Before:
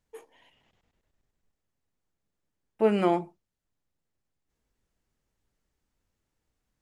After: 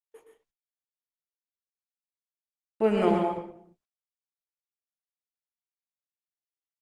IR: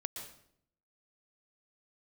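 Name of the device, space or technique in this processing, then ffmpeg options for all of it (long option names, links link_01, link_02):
speakerphone in a meeting room: -filter_complex "[1:a]atrim=start_sample=2205[link_01];[0:a][link_01]afir=irnorm=-1:irlink=0,asplit=2[link_02][link_03];[link_03]adelay=100,highpass=300,lowpass=3400,asoftclip=type=hard:threshold=-20.5dB,volume=-9dB[link_04];[link_02][link_04]amix=inputs=2:normalize=0,dynaudnorm=framelen=270:gausssize=7:maxgain=6dB,agate=range=-39dB:threshold=-51dB:ratio=16:detection=peak,volume=-4.5dB" -ar 48000 -c:a libopus -b:a 20k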